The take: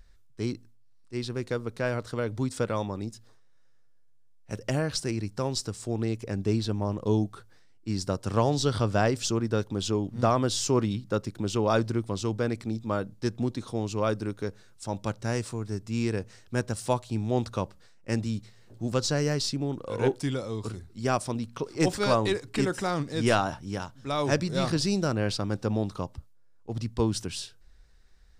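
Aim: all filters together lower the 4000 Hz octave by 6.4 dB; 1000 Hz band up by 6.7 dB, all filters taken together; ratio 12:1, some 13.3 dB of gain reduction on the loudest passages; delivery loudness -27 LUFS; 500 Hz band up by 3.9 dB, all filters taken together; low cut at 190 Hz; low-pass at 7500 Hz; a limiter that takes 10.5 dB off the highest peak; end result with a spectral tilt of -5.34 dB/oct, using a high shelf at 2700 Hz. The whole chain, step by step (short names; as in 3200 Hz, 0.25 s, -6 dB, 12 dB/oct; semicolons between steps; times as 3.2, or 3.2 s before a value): HPF 190 Hz; LPF 7500 Hz; bell 500 Hz +3 dB; bell 1000 Hz +8.5 dB; high shelf 2700 Hz -4.5 dB; bell 4000 Hz -4 dB; compressor 12:1, threshold -27 dBFS; gain +10.5 dB; limiter -14.5 dBFS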